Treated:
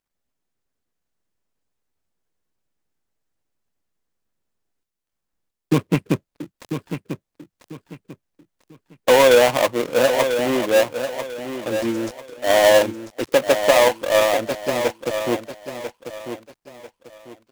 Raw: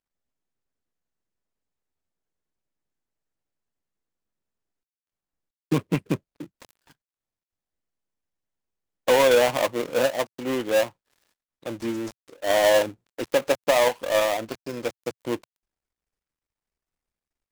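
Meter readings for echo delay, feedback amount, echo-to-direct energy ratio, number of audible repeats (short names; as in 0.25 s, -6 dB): 0.994 s, 30%, -8.5 dB, 3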